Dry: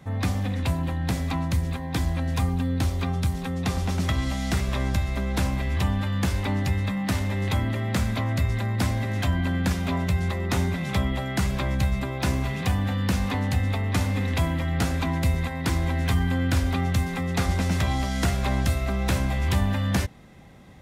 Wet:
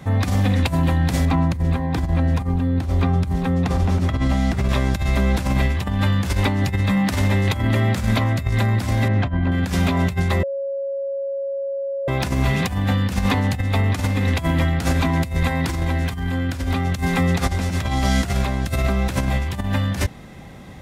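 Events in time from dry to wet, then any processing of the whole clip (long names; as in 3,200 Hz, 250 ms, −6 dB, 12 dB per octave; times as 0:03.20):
0:01.25–0:04.69: high-shelf EQ 2,400 Hz −11.5 dB
0:09.08–0:09.52: head-to-tape spacing loss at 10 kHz 31 dB
0:10.43–0:12.08: beep over 551 Hz −18.5 dBFS
whole clip: compressor whose output falls as the input rises −26 dBFS, ratio −0.5; level +7 dB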